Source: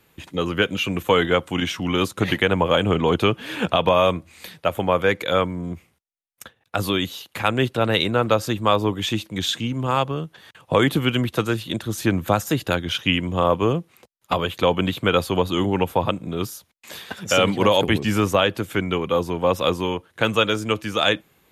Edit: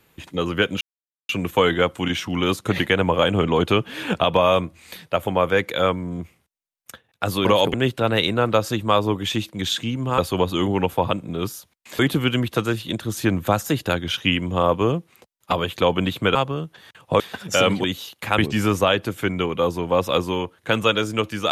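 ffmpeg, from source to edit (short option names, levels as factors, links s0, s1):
-filter_complex "[0:a]asplit=10[s0][s1][s2][s3][s4][s5][s6][s7][s8][s9];[s0]atrim=end=0.81,asetpts=PTS-STARTPTS,afade=t=out:st=0.806:d=0.004:c=hsin,apad=pad_dur=0.48[s10];[s1]atrim=start=0.81:end=6.972,asetpts=PTS-STARTPTS,afade=t=in:d=0.004:c=hsin[s11];[s2]atrim=start=17.608:end=17.902[s12];[s3]atrim=start=7.508:end=9.952[s13];[s4]atrim=start=15.158:end=16.972[s14];[s5]atrim=start=10.798:end=15.162[s15];[s6]atrim=start=9.948:end=10.802[s16];[s7]atrim=start=16.968:end=17.612[s17];[s8]atrim=start=6.968:end=7.512[s18];[s9]atrim=start=17.898[s19];[s10][s11]concat=n=2:v=0:a=1[s20];[s20][s12]acrossfade=d=0.004:c1=hsin:c2=hsin[s21];[s21][s13]acrossfade=d=0.004:c1=hsin:c2=hsin[s22];[s22][s14]acrossfade=d=0.004:c1=hsin:c2=hsin[s23];[s23][s15]acrossfade=d=0.004:c1=hsin:c2=hsin[s24];[s24][s16]acrossfade=d=0.004:c1=hsin:c2=hsin[s25];[s25][s17]acrossfade=d=0.004:c1=hsin:c2=hsin[s26];[s26][s18]acrossfade=d=0.004:c1=hsin:c2=hsin[s27];[s27][s19]acrossfade=d=0.004:c1=hsin:c2=hsin"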